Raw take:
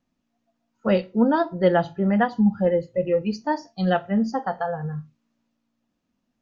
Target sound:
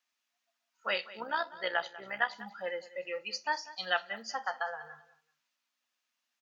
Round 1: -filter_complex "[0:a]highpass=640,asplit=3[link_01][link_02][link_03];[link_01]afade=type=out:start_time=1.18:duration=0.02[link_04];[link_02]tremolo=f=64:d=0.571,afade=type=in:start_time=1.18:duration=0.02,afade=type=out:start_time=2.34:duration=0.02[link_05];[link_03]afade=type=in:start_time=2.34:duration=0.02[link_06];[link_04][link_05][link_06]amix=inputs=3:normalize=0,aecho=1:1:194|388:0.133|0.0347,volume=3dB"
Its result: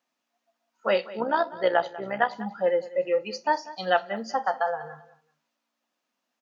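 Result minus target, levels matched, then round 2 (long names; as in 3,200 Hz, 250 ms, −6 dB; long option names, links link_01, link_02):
2,000 Hz band −6.0 dB
-filter_complex "[0:a]highpass=1600,asplit=3[link_01][link_02][link_03];[link_01]afade=type=out:start_time=1.18:duration=0.02[link_04];[link_02]tremolo=f=64:d=0.571,afade=type=in:start_time=1.18:duration=0.02,afade=type=out:start_time=2.34:duration=0.02[link_05];[link_03]afade=type=in:start_time=2.34:duration=0.02[link_06];[link_04][link_05][link_06]amix=inputs=3:normalize=0,aecho=1:1:194|388:0.133|0.0347,volume=3dB"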